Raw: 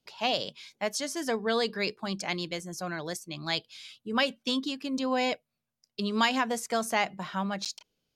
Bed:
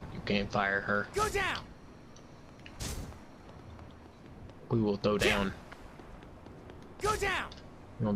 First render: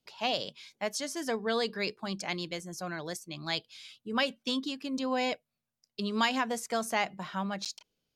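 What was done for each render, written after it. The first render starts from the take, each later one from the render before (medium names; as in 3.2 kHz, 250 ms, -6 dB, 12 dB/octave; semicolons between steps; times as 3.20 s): trim -2.5 dB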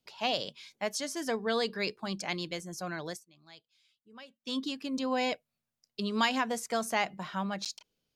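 3.08–4.59 s: dip -21 dB, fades 0.18 s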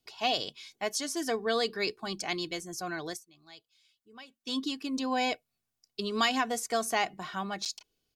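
tone controls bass +2 dB, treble +3 dB; comb 2.7 ms, depth 49%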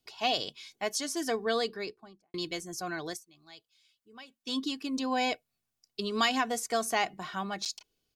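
1.45–2.34 s: studio fade out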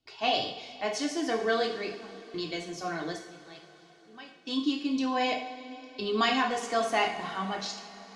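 distance through air 93 m; two-slope reverb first 0.55 s, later 4.6 s, from -18 dB, DRR -0.5 dB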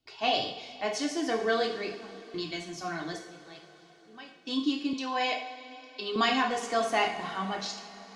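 2.42–3.13 s: peaking EQ 480 Hz -14 dB 0.34 oct; 4.93–6.16 s: frequency weighting A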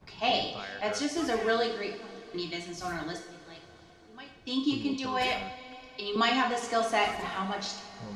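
add bed -11.5 dB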